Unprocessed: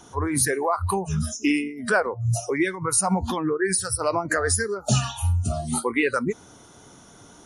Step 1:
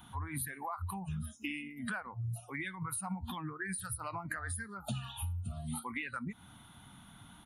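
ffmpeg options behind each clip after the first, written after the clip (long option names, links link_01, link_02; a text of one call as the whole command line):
ffmpeg -i in.wav -af "firequalizer=gain_entry='entry(210,0);entry(420,-23);entry(800,-4);entry(3600,1);entry(5600,-25);entry(12000,8)':delay=0.05:min_phase=1,acompressor=threshold=-34dB:ratio=6,volume=-2.5dB" out.wav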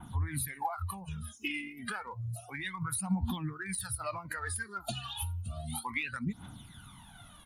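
ffmpeg -i in.wav -af "aphaser=in_gain=1:out_gain=1:delay=3:decay=0.69:speed=0.31:type=triangular,adynamicequalizer=threshold=0.00141:dfrequency=4600:dqfactor=1.1:tfrequency=4600:tqfactor=1.1:attack=5:release=100:ratio=0.375:range=3:mode=boostabove:tftype=bell" out.wav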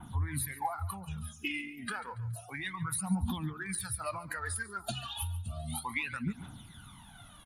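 ffmpeg -i in.wav -af "aecho=1:1:141|282|423:0.141|0.0523|0.0193" out.wav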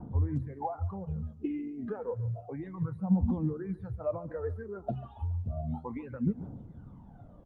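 ffmpeg -i in.wav -af "lowpass=frequency=490:width_type=q:width=4.4,volume=4dB" -ar 48000 -c:a libopus -b:a 48k out.opus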